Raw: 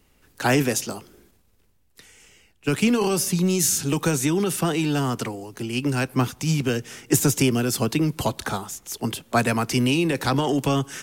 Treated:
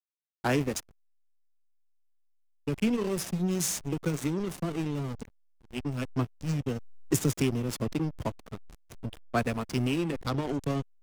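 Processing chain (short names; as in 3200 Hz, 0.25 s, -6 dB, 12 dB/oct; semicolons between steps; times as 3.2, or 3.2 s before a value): spectral noise reduction 29 dB; backlash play -18.5 dBFS; gain -6 dB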